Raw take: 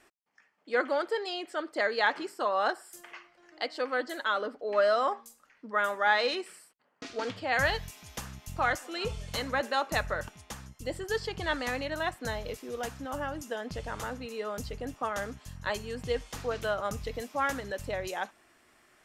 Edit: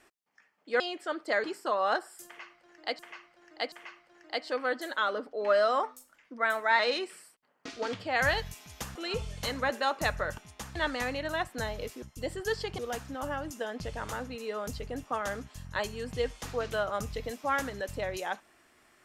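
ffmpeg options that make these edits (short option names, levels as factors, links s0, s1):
-filter_complex "[0:a]asplit=11[s0][s1][s2][s3][s4][s5][s6][s7][s8][s9][s10];[s0]atrim=end=0.802[s11];[s1]atrim=start=1.278:end=1.922[s12];[s2]atrim=start=2.178:end=3.732[s13];[s3]atrim=start=2.998:end=3.732[s14];[s4]atrim=start=2.998:end=5.114[s15];[s5]atrim=start=5.11:end=6.16,asetpts=PTS-STARTPTS,asetrate=48069,aresample=44100[s16];[s6]atrim=start=6.156:end=8.322[s17];[s7]atrim=start=8.858:end=10.662[s18];[s8]atrim=start=11.418:end=12.692[s19];[s9]atrim=start=10.658:end=11.422[s20];[s10]atrim=start=12.688[s21];[s11][s12]acrossfade=d=0.004:c1=hsin:c2=hsin[s22];[s22][s13]acrossfade=d=0.004:c1=hsin:c2=hsin[s23];[s23][s14]acrossfade=d=0.004:c1=hsin:c2=hsin[s24];[s24][s15]acrossfade=d=0.004:c1=hsin:c2=hsin[s25];[s25][s16]acrossfade=d=0.004:c1=hsin:c2=hsin[s26];[s26][s17]acrossfade=d=0.004:c1=hsin:c2=hsin[s27];[s27][s18]acrossfade=d=0.004:c1=hsin:c2=hsin[s28];[s28][s19]acrossfade=d=0.004:c1=hsin:c2=hsin[s29];[s29][s20]acrossfade=d=0.004:c1=hsin:c2=hsin[s30];[s30][s21]acrossfade=d=0.004:c1=hsin:c2=hsin"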